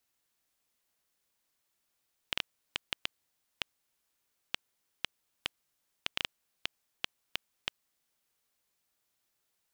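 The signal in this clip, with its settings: random clicks 3.1/s -11.5 dBFS 5.65 s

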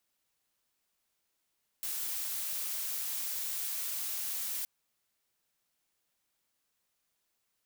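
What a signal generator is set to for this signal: noise blue, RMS -36 dBFS 2.82 s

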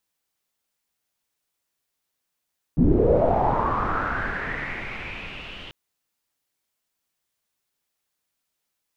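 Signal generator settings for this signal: swept filtered noise pink, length 2.94 s lowpass, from 190 Hz, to 3000 Hz, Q 5.9, linear, gain ramp -25.5 dB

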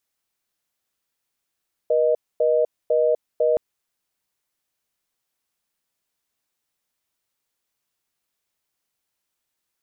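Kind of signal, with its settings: call progress tone reorder tone, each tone -18.5 dBFS 1.67 s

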